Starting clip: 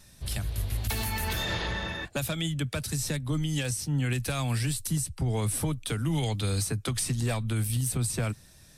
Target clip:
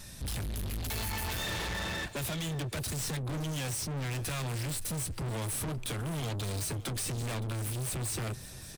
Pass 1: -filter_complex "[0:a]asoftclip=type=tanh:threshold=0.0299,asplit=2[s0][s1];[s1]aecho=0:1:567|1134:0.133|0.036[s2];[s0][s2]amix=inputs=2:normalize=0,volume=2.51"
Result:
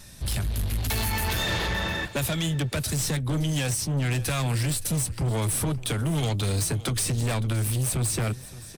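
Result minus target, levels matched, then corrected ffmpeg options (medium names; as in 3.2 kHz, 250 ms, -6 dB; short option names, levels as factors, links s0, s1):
saturation: distortion -6 dB
-filter_complex "[0:a]asoftclip=type=tanh:threshold=0.00841,asplit=2[s0][s1];[s1]aecho=0:1:567|1134:0.133|0.036[s2];[s0][s2]amix=inputs=2:normalize=0,volume=2.51"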